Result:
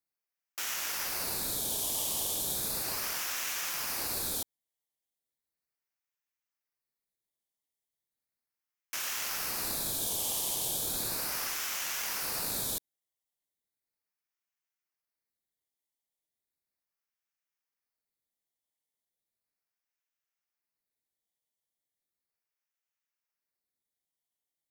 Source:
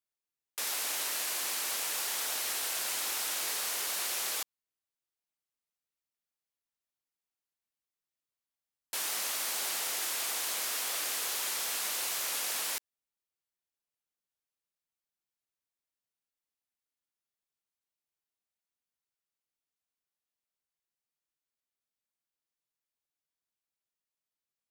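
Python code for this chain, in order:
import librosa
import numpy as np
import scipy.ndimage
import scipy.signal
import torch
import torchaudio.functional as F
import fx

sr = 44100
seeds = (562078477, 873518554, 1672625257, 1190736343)

y = fx.phaser_stages(x, sr, stages=4, low_hz=550.0, high_hz=1800.0, hz=0.36, feedback_pct=25)
y = y * np.sin(2.0 * np.pi * 2000.0 * np.arange(len(y)) / sr)
y = y * 10.0 ** (6.0 / 20.0)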